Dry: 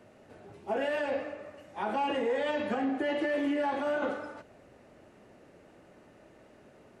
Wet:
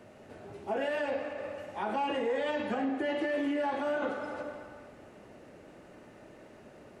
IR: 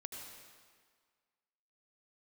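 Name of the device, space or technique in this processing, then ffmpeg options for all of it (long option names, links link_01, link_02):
ducked reverb: -filter_complex "[0:a]asplit=3[link_01][link_02][link_03];[1:a]atrim=start_sample=2205[link_04];[link_02][link_04]afir=irnorm=-1:irlink=0[link_05];[link_03]apad=whole_len=308717[link_06];[link_05][link_06]sidechaincompress=threshold=-42dB:ratio=8:attack=16:release=135,volume=5.5dB[link_07];[link_01][link_07]amix=inputs=2:normalize=0,volume=-3dB"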